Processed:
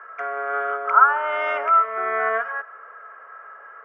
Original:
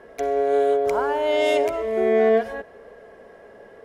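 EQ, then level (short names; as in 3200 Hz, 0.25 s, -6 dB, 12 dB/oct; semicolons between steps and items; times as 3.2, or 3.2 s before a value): running mean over 11 samples; resonant high-pass 1300 Hz, resonance Q 16; air absorption 230 m; +5.0 dB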